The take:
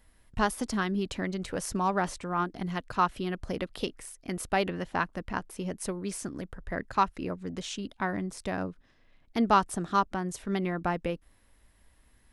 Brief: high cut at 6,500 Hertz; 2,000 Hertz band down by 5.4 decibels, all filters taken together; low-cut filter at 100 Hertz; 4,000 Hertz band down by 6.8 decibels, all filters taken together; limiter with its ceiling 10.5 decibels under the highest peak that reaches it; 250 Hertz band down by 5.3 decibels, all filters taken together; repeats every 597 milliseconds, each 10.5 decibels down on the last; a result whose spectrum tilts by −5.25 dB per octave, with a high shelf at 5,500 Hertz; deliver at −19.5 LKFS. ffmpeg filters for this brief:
ffmpeg -i in.wav -af "highpass=100,lowpass=6500,equalizer=frequency=250:width_type=o:gain=-7.5,equalizer=frequency=2000:width_type=o:gain=-6,equalizer=frequency=4000:width_type=o:gain=-4.5,highshelf=frequency=5500:gain=-4.5,alimiter=limit=-23.5dB:level=0:latency=1,aecho=1:1:597|1194|1791:0.299|0.0896|0.0269,volume=18dB" out.wav

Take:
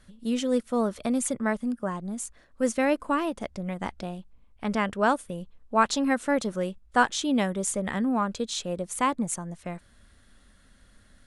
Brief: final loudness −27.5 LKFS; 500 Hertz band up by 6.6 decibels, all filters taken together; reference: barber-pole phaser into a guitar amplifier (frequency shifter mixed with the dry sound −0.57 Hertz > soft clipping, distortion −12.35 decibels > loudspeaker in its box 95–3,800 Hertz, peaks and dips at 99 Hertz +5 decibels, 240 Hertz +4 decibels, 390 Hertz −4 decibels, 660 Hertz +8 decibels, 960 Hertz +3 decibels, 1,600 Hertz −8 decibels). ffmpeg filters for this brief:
ffmpeg -i in.wav -filter_complex "[0:a]equalizer=frequency=500:width_type=o:gain=4,asplit=2[link_01][link_02];[link_02]afreqshift=-0.57[link_03];[link_01][link_03]amix=inputs=2:normalize=1,asoftclip=threshold=-22.5dB,highpass=95,equalizer=frequency=99:width_type=q:width=4:gain=5,equalizer=frequency=240:width_type=q:width=4:gain=4,equalizer=frequency=390:width_type=q:width=4:gain=-4,equalizer=frequency=660:width_type=q:width=4:gain=8,equalizer=frequency=960:width_type=q:width=4:gain=3,equalizer=frequency=1600:width_type=q:width=4:gain=-8,lowpass=frequency=3800:width=0.5412,lowpass=frequency=3800:width=1.3066,volume=2.5dB" out.wav

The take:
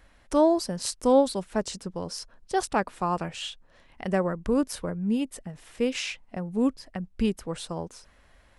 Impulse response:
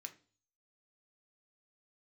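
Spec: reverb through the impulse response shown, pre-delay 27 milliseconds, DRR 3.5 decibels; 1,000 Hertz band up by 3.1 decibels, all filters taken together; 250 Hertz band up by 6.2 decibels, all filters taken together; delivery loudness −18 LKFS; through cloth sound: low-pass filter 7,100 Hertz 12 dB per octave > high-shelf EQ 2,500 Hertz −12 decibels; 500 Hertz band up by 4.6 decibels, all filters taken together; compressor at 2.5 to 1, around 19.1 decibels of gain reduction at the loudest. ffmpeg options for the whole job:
-filter_complex "[0:a]equalizer=frequency=250:width_type=o:gain=6.5,equalizer=frequency=500:width_type=o:gain=3.5,equalizer=frequency=1000:width_type=o:gain=4,acompressor=threshold=-40dB:ratio=2.5,asplit=2[link_01][link_02];[1:a]atrim=start_sample=2205,adelay=27[link_03];[link_02][link_03]afir=irnorm=-1:irlink=0,volume=1.5dB[link_04];[link_01][link_04]amix=inputs=2:normalize=0,lowpass=7100,highshelf=frequency=2500:gain=-12,volume=20dB"

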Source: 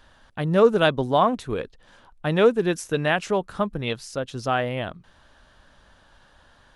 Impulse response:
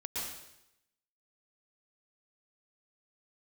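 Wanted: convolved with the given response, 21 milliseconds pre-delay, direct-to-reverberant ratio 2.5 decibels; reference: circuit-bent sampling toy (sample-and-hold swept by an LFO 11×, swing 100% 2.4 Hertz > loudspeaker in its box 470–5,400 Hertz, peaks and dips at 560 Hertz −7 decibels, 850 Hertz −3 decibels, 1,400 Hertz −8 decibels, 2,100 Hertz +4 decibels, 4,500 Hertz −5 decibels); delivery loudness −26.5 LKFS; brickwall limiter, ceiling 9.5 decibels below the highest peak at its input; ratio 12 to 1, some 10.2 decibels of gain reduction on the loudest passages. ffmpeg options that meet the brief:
-filter_complex "[0:a]acompressor=threshold=-21dB:ratio=12,alimiter=limit=-22dB:level=0:latency=1,asplit=2[link_01][link_02];[1:a]atrim=start_sample=2205,adelay=21[link_03];[link_02][link_03]afir=irnorm=-1:irlink=0,volume=-5dB[link_04];[link_01][link_04]amix=inputs=2:normalize=0,acrusher=samples=11:mix=1:aa=0.000001:lfo=1:lforange=11:lforate=2.4,highpass=470,equalizer=frequency=560:width_type=q:width=4:gain=-7,equalizer=frequency=850:width_type=q:width=4:gain=-3,equalizer=frequency=1400:width_type=q:width=4:gain=-8,equalizer=frequency=2100:width_type=q:width=4:gain=4,equalizer=frequency=4500:width_type=q:width=4:gain=-5,lowpass=frequency=5400:width=0.5412,lowpass=frequency=5400:width=1.3066,volume=10.5dB"

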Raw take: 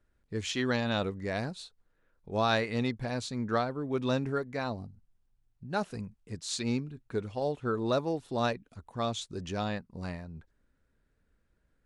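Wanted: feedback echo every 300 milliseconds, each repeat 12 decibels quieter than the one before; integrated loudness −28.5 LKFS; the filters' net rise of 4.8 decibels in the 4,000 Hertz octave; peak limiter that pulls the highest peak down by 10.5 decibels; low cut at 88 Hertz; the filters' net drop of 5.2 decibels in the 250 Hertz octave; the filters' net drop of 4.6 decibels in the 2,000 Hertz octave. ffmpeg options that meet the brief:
ffmpeg -i in.wav -af "highpass=88,equalizer=frequency=250:width_type=o:gain=-6,equalizer=frequency=2000:width_type=o:gain=-8,equalizer=frequency=4000:width_type=o:gain=7.5,alimiter=level_in=0.5dB:limit=-24dB:level=0:latency=1,volume=-0.5dB,aecho=1:1:300|600|900:0.251|0.0628|0.0157,volume=8dB" out.wav

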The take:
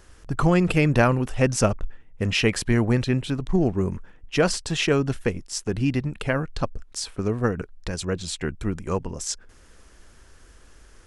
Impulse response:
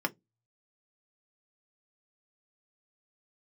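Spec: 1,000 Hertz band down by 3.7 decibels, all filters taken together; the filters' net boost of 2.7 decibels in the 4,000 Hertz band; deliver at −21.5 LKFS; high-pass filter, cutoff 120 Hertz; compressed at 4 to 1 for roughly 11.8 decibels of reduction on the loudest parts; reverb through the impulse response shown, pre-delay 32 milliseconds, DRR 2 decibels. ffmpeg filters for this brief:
-filter_complex "[0:a]highpass=120,equalizer=frequency=1000:width_type=o:gain=-5.5,equalizer=frequency=4000:width_type=o:gain=4,acompressor=threshold=-30dB:ratio=4,asplit=2[link_01][link_02];[1:a]atrim=start_sample=2205,adelay=32[link_03];[link_02][link_03]afir=irnorm=-1:irlink=0,volume=-9dB[link_04];[link_01][link_04]amix=inputs=2:normalize=0,volume=10dB"

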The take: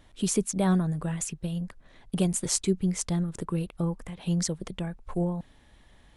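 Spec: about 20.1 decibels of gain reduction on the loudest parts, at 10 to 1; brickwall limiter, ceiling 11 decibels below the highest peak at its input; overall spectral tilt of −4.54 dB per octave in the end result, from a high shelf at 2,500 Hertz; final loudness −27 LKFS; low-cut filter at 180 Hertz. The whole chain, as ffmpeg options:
ffmpeg -i in.wav -af "highpass=180,highshelf=frequency=2500:gain=3,acompressor=threshold=-41dB:ratio=10,volume=19.5dB,alimiter=limit=-15dB:level=0:latency=1" out.wav

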